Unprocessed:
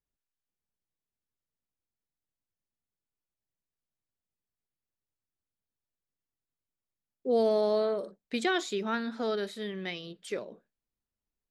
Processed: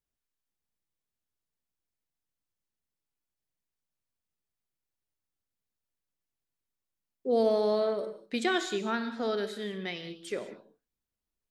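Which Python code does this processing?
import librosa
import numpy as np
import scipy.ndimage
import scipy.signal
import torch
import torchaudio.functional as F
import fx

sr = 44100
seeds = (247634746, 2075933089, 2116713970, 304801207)

y = fx.rev_gated(x, sr, seeds[0], gate_ms=220, shape='flat', drr_db=9.5)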